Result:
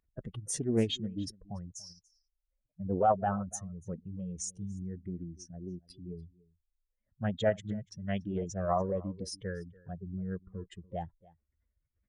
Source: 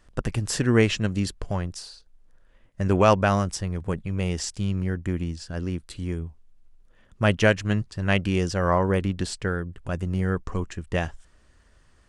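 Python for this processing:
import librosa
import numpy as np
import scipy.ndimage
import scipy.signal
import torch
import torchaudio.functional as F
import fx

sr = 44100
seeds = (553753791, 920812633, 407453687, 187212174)

p1 = fx.spec_expand(x, sr, power=2.4)
p2 = fx.highpass(p1, sr, hz=250.0, slope=6)
p3 = p2 + fx.echo_single(p2, sr, ms=288, db=-23.0, dry=0)
p4 = fx.formant_shift(p3, sr, semitones=3)
p5 = fx.doppler_dist(p4, sr, depth_ms=0.18)
y = p5 * librosa.db_to_amplitude(-5.5)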